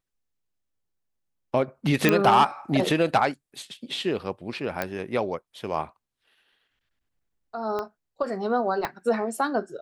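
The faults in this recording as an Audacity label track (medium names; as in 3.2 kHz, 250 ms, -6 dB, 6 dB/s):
2.090000	2.090000	pop -6 dBFS
4.820000	4.820000	pop -12 dBFS
7.790000	7.790000	pop -18 dBFS
8.850000	8.850000	pop -13 dBFS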